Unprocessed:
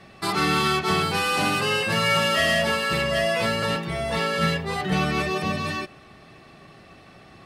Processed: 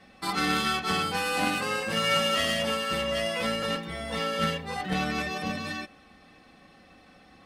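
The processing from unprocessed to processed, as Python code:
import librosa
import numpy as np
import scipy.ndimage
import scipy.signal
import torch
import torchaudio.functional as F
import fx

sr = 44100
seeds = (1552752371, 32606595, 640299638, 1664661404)

y = x + 0.67 * np.pad(x, (int(3.9 * sr / 1000.0), 0))[:len(x)]
y = fx.cheby_harmonics(y, sr, harmonics=(3, 4), levels_db=(-17, -29), full_scale_db=-8.0)
y = y * librosa.db_to_amplitude(-2.5)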